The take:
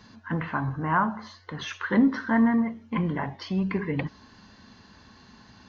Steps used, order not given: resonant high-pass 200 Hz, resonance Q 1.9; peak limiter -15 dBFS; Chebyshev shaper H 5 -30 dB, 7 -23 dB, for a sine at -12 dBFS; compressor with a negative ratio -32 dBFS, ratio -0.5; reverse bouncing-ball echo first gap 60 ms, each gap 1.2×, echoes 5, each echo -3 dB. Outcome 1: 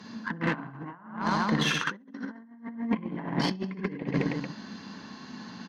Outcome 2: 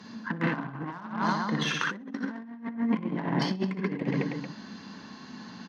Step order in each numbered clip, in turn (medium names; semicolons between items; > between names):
reverse bouncing-ball echo > compressor with a negative ratio > resonant high-pass > peak limiter > Chebyshev shaper; reverse bouncing-ball echo > peak limiter > Chebyshev shaper > compressor with a negative ratio > resonant high-pass